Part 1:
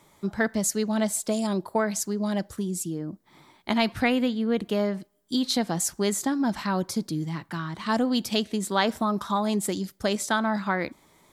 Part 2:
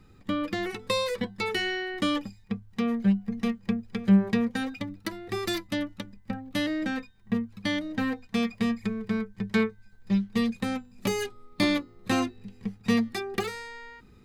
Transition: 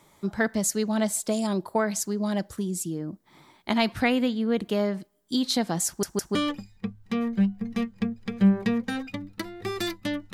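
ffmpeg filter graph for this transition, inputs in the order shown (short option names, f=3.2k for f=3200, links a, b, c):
-filter_complex "[0:a]apad=whole_dur=10.33,atrim=end=10.33,asplit=3[a][b][c];[a]atrim=end=6.032[d];[b]atrim=start=5.868:end=6.032[e];[c]atrim=start=5.868:end=6.032[f];[1:a]atrim=start=2.018:end=6[g];[d][e]acrossfade=d=0.004:c1=hsin:c2=hsin[h];[h][f]acrossfade=d=0.004:c1=hsin:c2=hsin[i];[i][g]acrossfade=d=0.004:c1=hsin:c2=hsin"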